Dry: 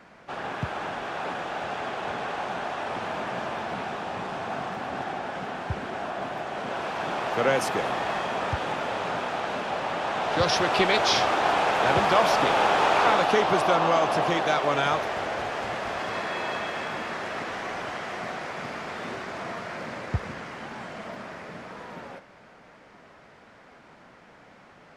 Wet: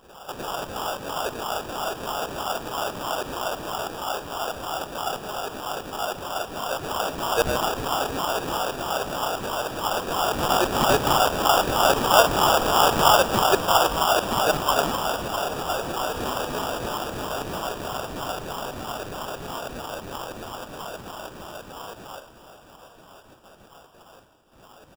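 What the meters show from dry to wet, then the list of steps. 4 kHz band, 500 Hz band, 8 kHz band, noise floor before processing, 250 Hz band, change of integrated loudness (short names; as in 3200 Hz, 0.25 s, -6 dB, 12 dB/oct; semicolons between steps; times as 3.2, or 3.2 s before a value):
+5.0 dB, +1.5 dB, +10.0 dB, -52 dBFS, +1.5 dB, +2.5 dB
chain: gate with hold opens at -42 dBFS; reverse echo 0.554 s -16 dB; LFO high-pass saw down 3.1 Hz 390–3000 Hz; sample-rate reducer 2100 Hz, jitter 0%; feedback echo 1.023 s, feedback 52%, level -16 dB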